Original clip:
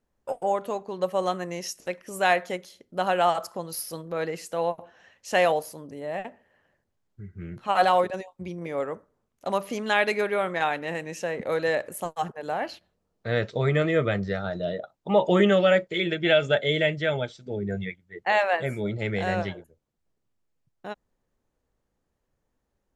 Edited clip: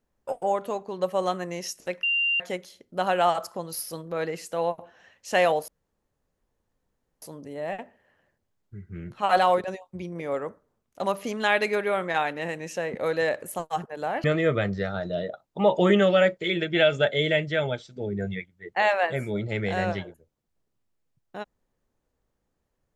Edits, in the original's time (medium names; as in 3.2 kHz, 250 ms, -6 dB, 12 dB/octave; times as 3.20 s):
2.03–2.40 s: bleep 2.78 kHz -21 dBFS
5.68 s: insert room tone 1.54 s
12.70–13.74 s: delete